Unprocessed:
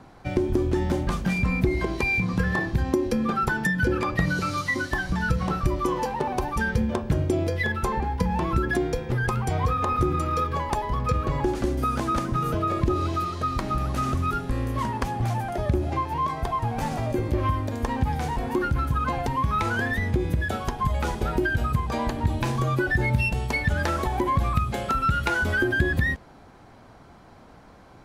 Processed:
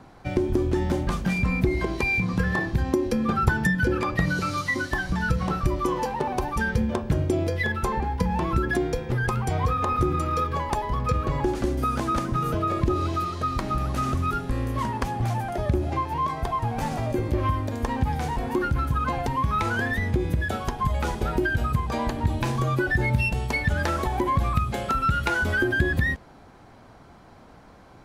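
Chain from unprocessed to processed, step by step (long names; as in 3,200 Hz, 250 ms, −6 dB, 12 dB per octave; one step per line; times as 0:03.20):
0:03.28–0:03.75: parametric band 79 Hz +14 dB 1.3 octaves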